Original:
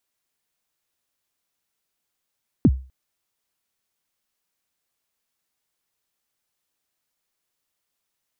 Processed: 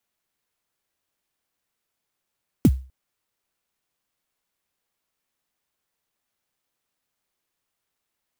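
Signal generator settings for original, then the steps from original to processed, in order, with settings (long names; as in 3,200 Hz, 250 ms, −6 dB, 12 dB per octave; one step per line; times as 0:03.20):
synth kick length 0.25 s, from 330 Hz, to 65 Hz, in 49 ms, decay 0.35 s, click off, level −7.5 dB
converter with an unsteady clock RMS 0.054 ms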